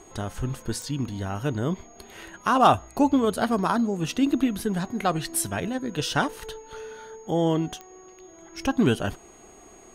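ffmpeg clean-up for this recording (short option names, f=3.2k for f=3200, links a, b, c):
-af "adeclick=t=4,bandreject=f=6.6k:w=30"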